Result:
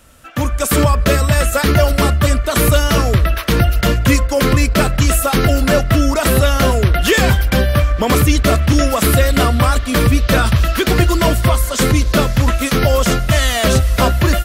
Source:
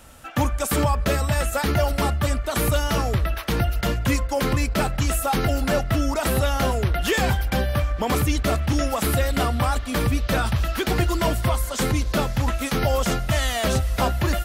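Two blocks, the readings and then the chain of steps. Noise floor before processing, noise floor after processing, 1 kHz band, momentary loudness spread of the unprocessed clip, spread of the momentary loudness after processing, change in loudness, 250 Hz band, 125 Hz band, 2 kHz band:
-31 dBFS, -22 dBFS, +6.5 dB, 2 LU, 2 LU, +8.5 dB, +9.0 dB, +9.0 dB, +9.0 dB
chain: peaking EQ 820 Hz -9 dB 0.26 oct; level rider gain up to 12.5 dB

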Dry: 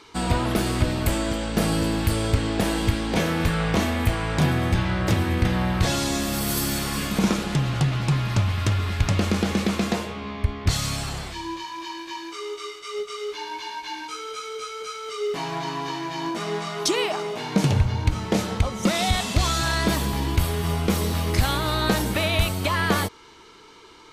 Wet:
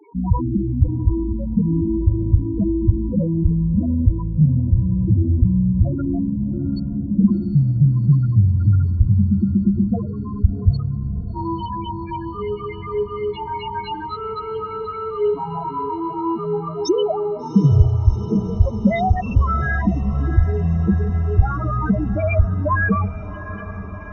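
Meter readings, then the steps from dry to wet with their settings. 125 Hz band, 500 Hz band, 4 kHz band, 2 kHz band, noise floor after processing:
+7.0 dB, +3.0 dB, -14.5 dB, -3.0 dB, -31 dBFS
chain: modulation noise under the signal 31 dB; loudest bins only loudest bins 4; echo that smears into a reverb 733 ms, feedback 71%, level -14.5 dB; trim +8 dB

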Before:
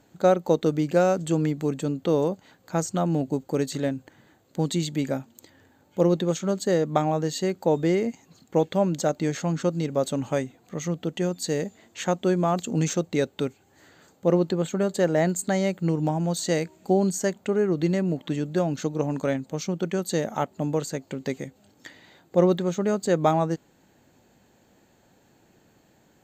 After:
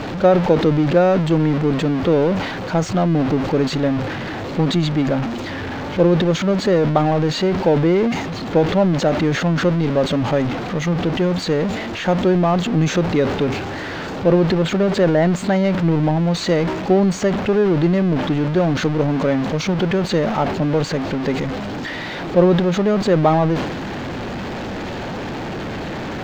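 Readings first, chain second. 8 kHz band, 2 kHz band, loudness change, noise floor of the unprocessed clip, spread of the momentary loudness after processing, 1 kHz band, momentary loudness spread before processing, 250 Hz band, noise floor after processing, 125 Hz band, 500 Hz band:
-1.0 dB, +11.0 dB, +7.0 dB, -61 dBFS, 11 LU, +7.5 dB, 8 LU, +8.5 dB, -27 dBFS, +9.0 dB, +7.0 dB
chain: jump at every zero crossing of -24 dBFS; distance through air 230 m; transient shaper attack +1 dB, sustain +6 dB; trim +4.5 dB

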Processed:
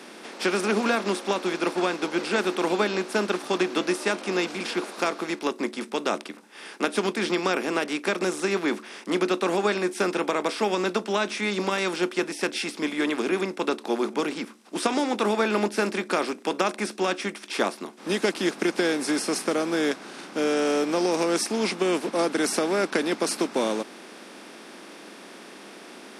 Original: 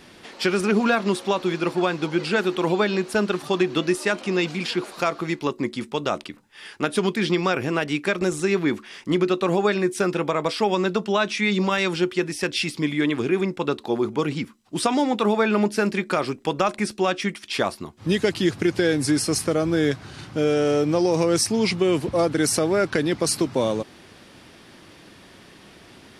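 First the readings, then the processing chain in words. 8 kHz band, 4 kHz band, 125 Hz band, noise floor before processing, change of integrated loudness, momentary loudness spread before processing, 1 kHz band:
-3.0 dB, -2.0 dB, -11.0 dB, -49 dBFS, -3.0 dB, 6 LU, -1.5 dB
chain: spectral levelling over time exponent 0.6; steep high-pass 200 Hz 36 dB/octave; upward expansion 1.5:1, over -28 dBFS; trim -5 dB

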